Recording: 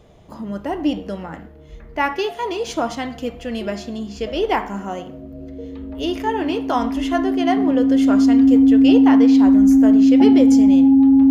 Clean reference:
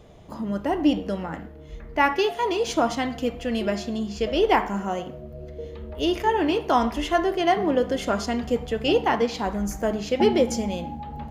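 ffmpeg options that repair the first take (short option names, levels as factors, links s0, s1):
-af "bandreject=f=270:w=30"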